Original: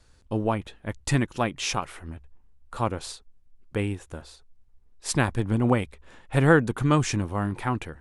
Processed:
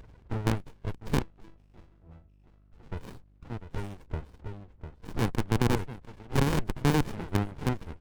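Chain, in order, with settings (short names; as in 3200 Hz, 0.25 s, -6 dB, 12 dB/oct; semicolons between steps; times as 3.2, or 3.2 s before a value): bin magnitudes rounded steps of 30 dB; on a send: echo 0.699 s -18.5 dB; on the sum: upward compressor, threshold -25 dBFS; wrapped overs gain 15.5 dB; HPF 67 Hz 12 dB/oct; resonant low shelf 380 Hz -8.5 dB, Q 3; 1.22–2.92 octave resonator E, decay 0.25 s; low-pass opened by the level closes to 1600 Hz, open at -27 dBFS; 4.07–5.19 tilt -3 dB/oct; hum 50 Hz, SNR 27 dB; running maximum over 65 samples; gain -2.5 dB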